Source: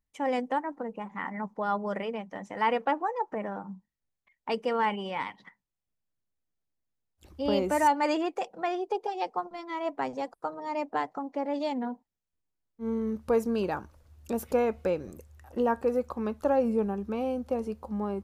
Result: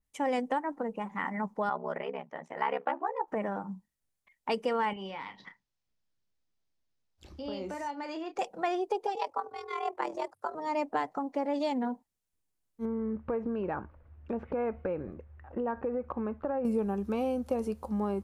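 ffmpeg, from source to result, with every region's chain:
-filter_complex "[0:a]asettb=1/sr,asplit=3[a][b][c];[a]atrim=end=1.694[d];[b]atrim=start=1.69:end=3.28,asetpts=PTS-STARTPTS,afade=t=in:d=0.004:c=qsin,afade=t=out:st=1.586:d=0.004:c=qsin,bass=f=250:g=-12,treble=f=4k:g=-14,aeval=exprs='val(0)*sin(2*PI*34*n/s)':c=same[e];[c]atrim=start=3.276[f];[d][e]acrossfade=d=0.004:c1=hsin:c2=qsin[g];[g][f]acrossfade=d=0.004:c1=qsin:c2=hsin,asettb=1/sr,asplit=3[h][i][j];[h]atrim=end=4.934[k];[i]atrim=start=4.93:end=8.39,asetpts=PTS-STARTPTS,afade=t=in:d=0.004:c=qsin,afade=t=out:st=3.456:d=0.004:c=qsin,highshelf=f=7.2k:t=q:w=1.5:g=-12,acompressor=threshold=-41dB:ratio=3:attack=3.2:release=140:knee=1:detection=peak,asplit=2[l][m];[m]adelay=31,volume=-9dB[n];[l][n]amix=inputs=2:normalize=0,atrim=end_sample=152586[o];[j]atrim=start=8.386[p];[k][o]acrossfade=d=0.004:c1=hsin:c2=qsin[q];[q][p]acrossfade=d=0.004:c1=qsin:c2=hsin,asettb=1/sr,asplit=3[r][s][t];[r]atrim=end=9.154[u];[s]atrim=start=9.15:end=10.55,asetpts=PTS-STARTPTS,afade=t=in:d=0.004:c=qsin,afade=t=out:st=1.396:d=0.004:c=qsin,tremolo=f=41:d=0.667,afreqshift=84[v];[t]atrim=start=10.546[w];[u][v]acrossfade=d=0.004:c1=hsin:c2=qsin[x];[x][w]acrossfade=d=0.004:c1=qsin:c2=hsin,asettb=1/sr,asplit=3[y][z][aa];[y]atrim=end=12.854[ab];[z]atrim=start=12.85:end=16.65,asetpts=PTS-STARTPTS,afade=t=in:d=0.004:c=qsin,afade=t=out:st=3.796:d=0.004:c=qsin,lowpass=f=2.2k:w=0.5412,lowpass=f=2.2k:w=1.3066,acompressor=threshold=-30dB:ratio=5:attack=3.2:release=140:knee=1:detection=peak[ac];[aa]atrim=start=16.646[ad];[ab][ac]acrossfade=d=0.004:c1=hsin:c2=qsin[ae];[ae][ad]acrossfade=d=0.004:c1=qsin:c2=hsin,equalizer=f=10k:w=0.87:g=6,acompressor=threshold=-27dB:ratio=6,adynamicequalizer=threshold=0.00398:dfrequency=3400:dqfactor=0.7:tfrequency=3400:tqfactor=0.7:attack=5:release=100:ratio=0.375:range=1.5:mode=cutabove:tftype=highshelf,volume=1.5dB"

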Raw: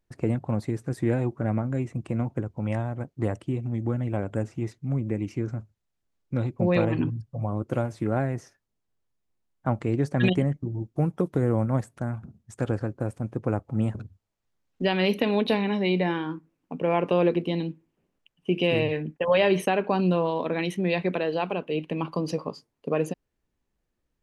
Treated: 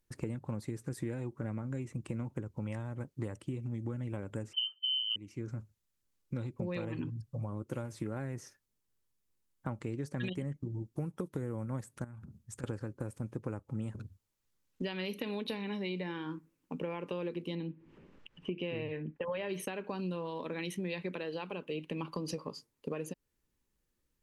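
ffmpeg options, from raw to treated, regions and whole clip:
-filter_complex "[0:a]asettb=1/sr,asplit=3[a][b][c];[a]atrim=end=4.534[d];[b]atrim=start=4.53:end=5.16,asetpts=PTS-STARTPTS,afade=t=in:d=0.004:c=qsin,afade=t=out:st=0.626:d=0.004:c=qsin,lowshelf=f=380:t=q:w=1.5:g=12.5,lowpass=f=2.7k:t=q:w=0.5098,lowpass=f=2.7k:t=q:w=0.6013,lowpass=f=2.7k:t=q:w=0.9,lowpass=f=2.7k:t=q:w=2.563,afreqshift=-3200[e];[c]atrim=start=5.156[f];[d][e]acrossfade=d=0.004:c1=hsin:c2=qsin[g];[g][f]acrossfade=d=0.004:c1=qsin:c2=hsin,asettb=1/sr,asplit=3[h][i][j];[h]atrim=end=12.044[k];[i]atrim=start=12.04:end=12.64,asetpts=PTS-STARTPTS,afade=t=in:d=0.004:c=qsin,afade=t=out:st=0.596:d=0.004:c=qsin,asubboost=boost=6.5:cutoff=230,acompressor=threshold=-42dB:ratio=5:attack=3.2:release=140:knee=1:detection=peak[l];[j]atrim=start=12.636[m];[k][l]acrossfade=d=0.004:c1=hsin:c2=qsin[n];[n][m]acrossfade=d=0.004:c1=qsin:c2=hsin,asettb=1/sr,asplit=3[o][p][q];[o]atrim=end=17.554[r];[p]atrim=start=17.55:end=19.49,asetpts=PTS-STARTPTS,afade=t=in:d=0.004:c=qsin,afade=t=out:st=1.936:d=0.004:c=qsin,lowpass=2.5k,acompressor=mode=upward:threshold=-37dB:ratio=2.5:attack=3.2:release=140:knee=2.83:detection=peak[s];[q]atrim=start=19.486[t];[r][s]acrossfade=d=0.004:c1=hsin:c2=qsin[u];[u][t]acrossfade=d=0.004:c1=qsin:c2=hsin,aemphasis=mode=production:type=cd,acompressor=threshold=-32dB:ratio=5,equalizer=f=700:w=5.7:g=-10.5,volume=-2.5dB"

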